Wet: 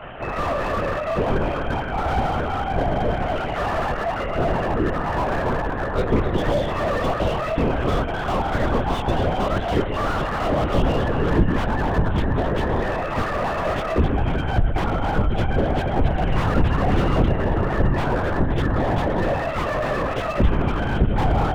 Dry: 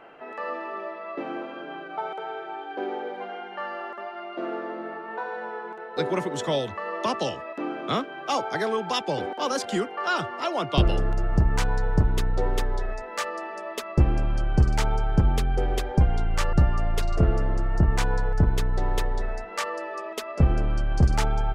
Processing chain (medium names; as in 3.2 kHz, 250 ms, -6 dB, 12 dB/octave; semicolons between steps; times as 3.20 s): high-pass 53 Hz 24 dB/octave; in parallel at +2.5 dB: peak limiter -16 dBFS, peak gain reduction 7.5 dB; on the sum: compression 16:1, threshold -21 dBFS, peak gain reduction 12.5 dB; chorus voices 6, 0.38 Hz, delay 14 ms, depth 3.7 ms; echo whose repeats swap between lows and highs 132 ms, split 1 kHz, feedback 76%, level -10.5 dB; LPC vocoder at 8 kHz whisper; slew-rate limiter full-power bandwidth 29 Hz; trim +8.5 dB